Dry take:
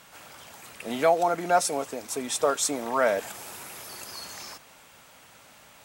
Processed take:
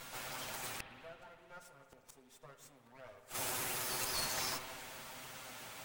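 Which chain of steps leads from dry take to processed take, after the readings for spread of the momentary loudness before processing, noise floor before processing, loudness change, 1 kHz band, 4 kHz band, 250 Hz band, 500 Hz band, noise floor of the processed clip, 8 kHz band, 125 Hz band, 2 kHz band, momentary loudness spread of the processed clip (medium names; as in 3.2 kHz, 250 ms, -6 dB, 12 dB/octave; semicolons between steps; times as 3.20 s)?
20 LU, -53 dBFS, -13.0 dB, -17.5 dB, -5.5 dB, -19.0 dB, -23.5 dB, -65 dBFS, -9.5 dB, -8.0 dB, -10.0 dB, 22 LU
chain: comb filter that takes the minimum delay 7.8 ms; inverted gate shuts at -27 dBFS, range -35 dB; spring tank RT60 2.3 s, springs 51/56 ms, chirp 55 ms, DRR 7 dB; trim +4 dB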